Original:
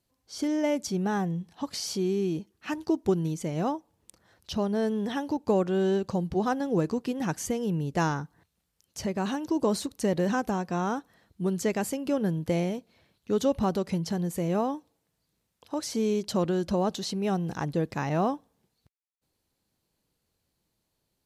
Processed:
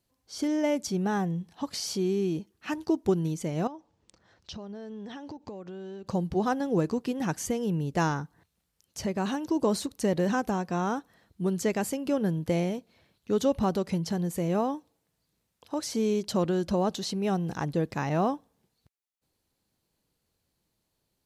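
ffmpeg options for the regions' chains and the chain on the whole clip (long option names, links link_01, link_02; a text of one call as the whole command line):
ffmpeg -i in.wav -filter_complex "[0:a]asettb=1/sr,asplit=3[link_01][link_02][link_03];[link_01]atrim=end=3.674[link_04];[link_02]atrim=start=3.67:end=6.07,asetpts=PTS-STARTPTS,afade=type=in:duration=0.004:curve=qsin,afade=type=out:start_time=2.396:duration=0.004:curve=qsin,lowpass=frequency=6900:width=0.5412,lowpass=frequency=6900:width=1.3066,acompressor=threshold=-37dB:ratio=10:attack=3.2:release=140:knee=1:detection=peak[link_05];[link_03]atrim=start=6.066[link_06];[link_04][link_05]acrossfade=duration=0.004:curve1=hsin:curve2=qsin[link_07];[link_07][link_06]acrossfade=duration=0.004:curve1=qsin:curve2=hsin" out.wav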